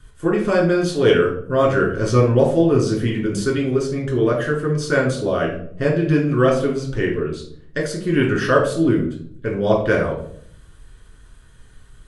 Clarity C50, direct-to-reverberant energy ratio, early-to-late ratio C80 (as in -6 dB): 5.5 dB, -3.0 dB, 10.0 dB